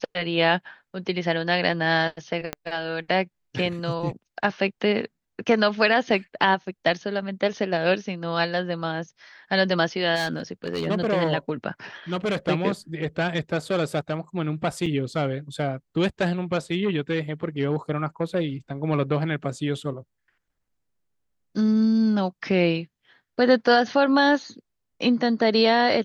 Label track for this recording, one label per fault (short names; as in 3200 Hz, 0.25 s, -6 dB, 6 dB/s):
2.530000	2.530000	pop -12 dBFS
10.150000	10.880000	clipped -22 dBFS
14.860000	14.860000	gap 3.5 ms